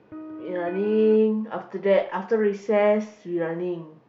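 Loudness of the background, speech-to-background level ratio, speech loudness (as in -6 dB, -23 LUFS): -39.5 LUFS, 16.0 dB, -23.5 LUFS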